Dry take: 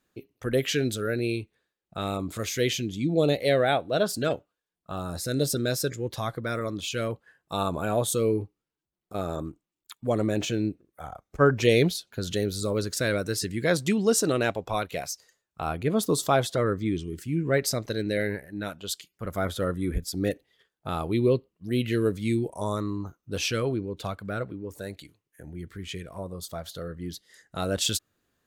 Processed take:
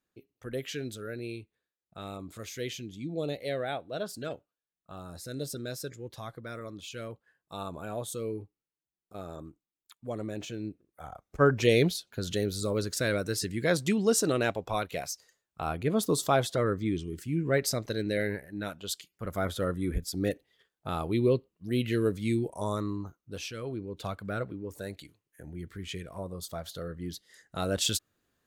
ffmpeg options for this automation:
ffmpeg -i in.wav -af "volume=8.5dB,afade=type=in:start_time=10.59:duration=0.71:silence=0.398107,afade=type=out:start_time=22.9:duration=0.64:silence=0.298538,afade=type=in:start_time=23.54:duration=0.63:silence=0.281838" out.wav

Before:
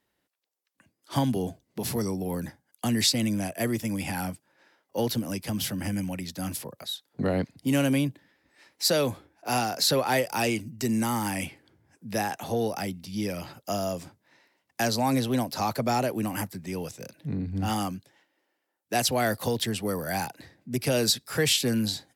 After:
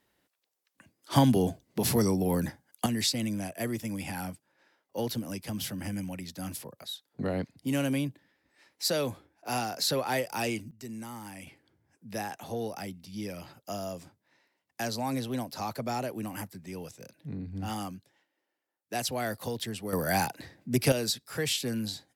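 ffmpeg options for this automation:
ffmpeg -i in.wav -af "asetnsamples=nb_out_samples=441:pad=0,asendcmd='2.86 volume volume -5dB;10.71 volume volume -14.5dB;11.47 volume volume -7dB;19.93 volume volume 2.5dB;20.92 volume volume -6.5dB',volume=3.5dB" out.wav

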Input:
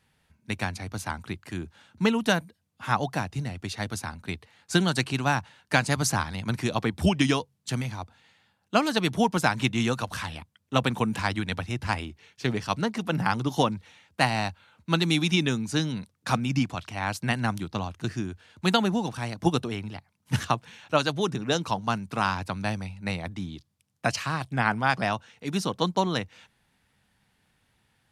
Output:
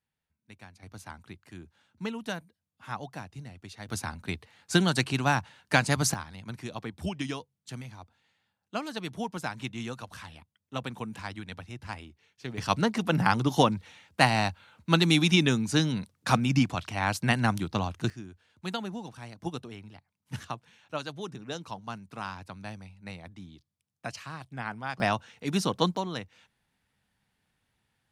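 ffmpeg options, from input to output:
ffmpeg -i in.wav -af "asetnsamples=nb_out_samples=441:pad=0,asendcmd='0.83 volume volume -11.5dB;3.89 volume volume -0.5dB;6.14 volume volume -11dB;12.58 volume volume 1.5dB;18.1 volume volume -11.5dB;25 volume volume 0.5dB;25.97 volume volume -7.5dB',volume=-20dB" out.wav

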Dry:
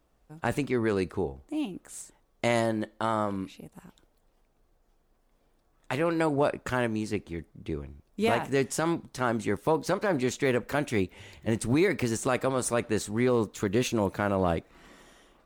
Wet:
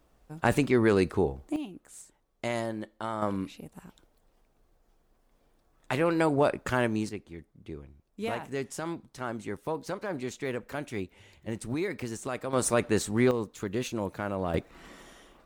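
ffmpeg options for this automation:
ffmpeg -i in.wav -af "asetnsamples=nb_out_samples=441:pad=0,asendcmd='1.56 volume volume -6dB;3.22 volume volume 1dB;7.09 volume volume -7.5dB;12.53 volume volume 2dB;13.31 volume volume -5.5dB;14.54 volume volume 3.5dB',volume=4dB" out.wav

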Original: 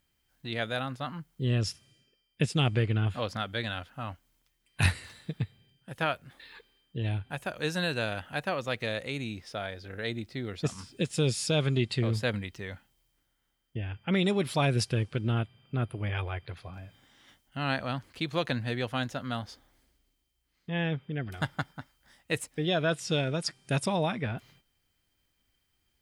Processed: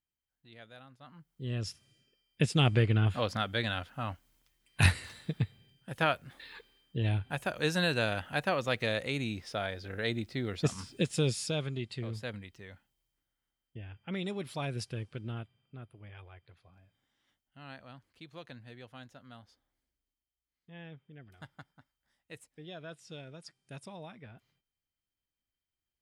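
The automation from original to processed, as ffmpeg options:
ffmpeg -i in.wav -af "volume=1dB,afade=type=in:start_time=0.99:duration=0.5:silence=0.266073,afade=type=in:start_time=1.49:duration=1.22:silence=0.334965,afade=type=out:start_time=10.89:duration=0.82:silence=0.281838,afade=type=out:start_time=15.22:duration=0.62:silence=0.398107" out.wav

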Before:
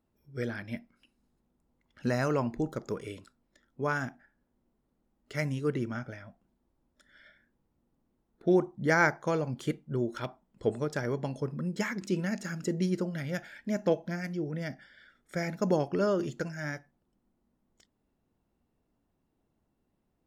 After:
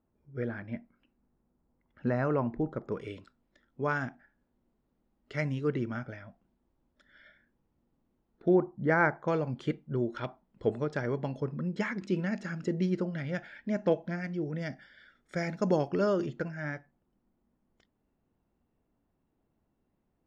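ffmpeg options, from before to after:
ffmpeg -i in.wav -af "asetnsamples=nb_out_samples=441:pad=0,asendcmd='2.92 lowpass f 4000;8.48 lowpass f 1800;9.28 lowpass f 3600;14.42 lowpass f 6000;16.26 lowpass f 2800',lowpass=1700" out.wav

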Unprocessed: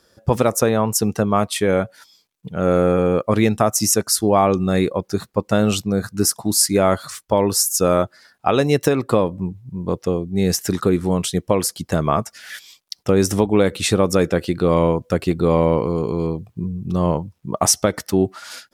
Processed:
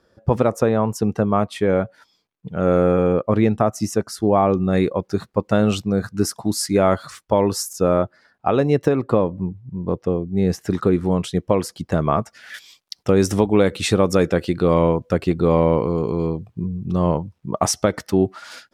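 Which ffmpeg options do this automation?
ffmpeg -i in.wav -af "asetnsamples=nb_out_samples=441:pad=0,asendcmd='2.49 lowpass f 2500;3.13 lowpass f 1200;4.73 lowpass f 2800;7.73 lowpass f 1200;10.71 lowpass f 2100;12.54 lowpass f 5400;14.73 lowpass f 3400',lowpass=frequency=1400:poles=1" out.wav

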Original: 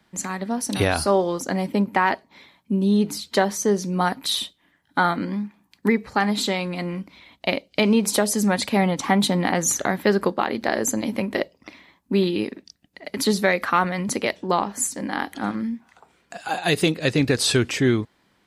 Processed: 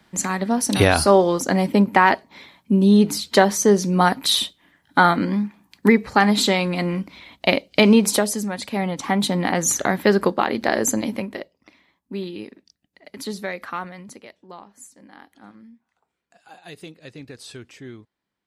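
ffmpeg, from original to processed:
ffmpeg -i in.wav -af "volume=15dB,afade=type=out:start_time=7.91:duration=0.58:silence=0.237137,afade=type=in:start_time=8.49:duration=1.47:silence=0.316228,afade=type=out:start_time=10.95:duration=0.45:silence=0.251189,afade=type=out:start_time=13.73:duration=0.51:silence=0.316228" out.wav

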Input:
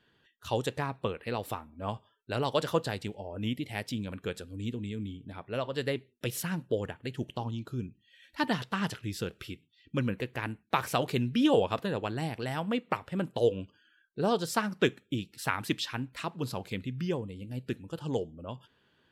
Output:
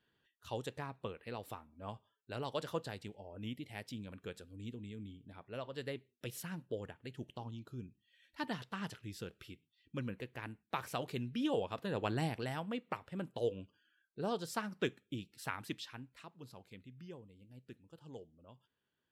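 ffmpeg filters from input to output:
ffmpeg -i in.wav -af "volume=-1dB,afade=type=in:start_time=11.79:duration=0.34:silence=0.334965,afade=type=out:start_time=12.13:duration=0.55:silence=0.375837,afade=type=out:start_time=15.43:duration=0.86:silence=0.354813" out.wav

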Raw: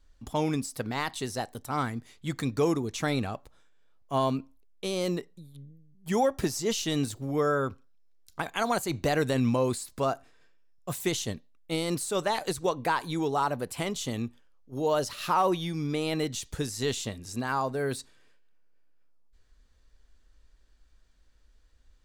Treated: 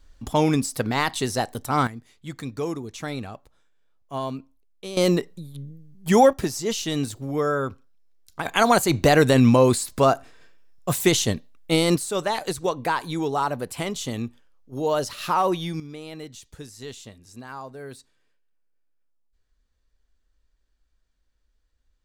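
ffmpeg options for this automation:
ffmpeg -i in.wav -af "asetnsamples=nb_out_samples=441:pad=0,asendcmd='1.87 volume volume -3dB;4.97 volume volume 10dB;6.33 volume volume 2.5dB;8.45 volume volume 10dB;11.96 volume volume 3dB;15.8 volume volume -8.5dB',volume=8dB" out.wav

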